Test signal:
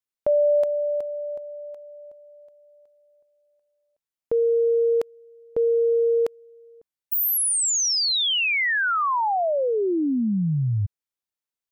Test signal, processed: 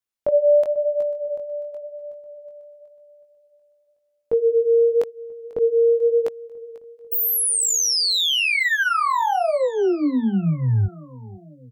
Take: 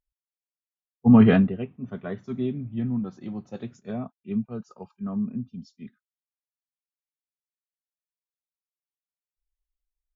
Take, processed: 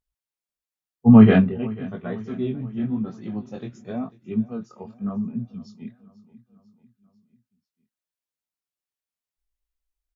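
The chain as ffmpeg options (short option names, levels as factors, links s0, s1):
-filter_complex "[0:a]flanger=delay=17:depth=6.8:speed=0.94,asplit=2[s0][s1];[s1]aecho=0:1:494|988|1482|1976:0.0944|0.0538|0.0307|0.0175[s2];[s0][s2]amix=inputs=2:normalize=0,volume=1.78"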